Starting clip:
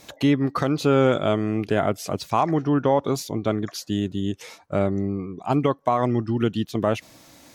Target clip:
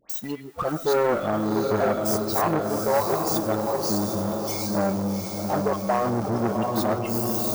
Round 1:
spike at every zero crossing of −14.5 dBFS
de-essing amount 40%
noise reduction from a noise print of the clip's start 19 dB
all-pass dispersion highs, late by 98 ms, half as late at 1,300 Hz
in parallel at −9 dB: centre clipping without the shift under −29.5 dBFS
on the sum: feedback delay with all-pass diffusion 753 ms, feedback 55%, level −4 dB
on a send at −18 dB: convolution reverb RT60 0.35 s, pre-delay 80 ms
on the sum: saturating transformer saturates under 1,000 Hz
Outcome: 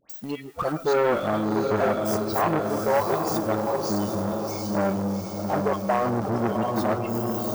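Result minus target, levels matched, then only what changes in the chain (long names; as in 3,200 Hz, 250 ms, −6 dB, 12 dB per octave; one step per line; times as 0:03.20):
spike at every zero crossing: distortion −6 dB
change: spike at every zero crossing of −8.5 dBFS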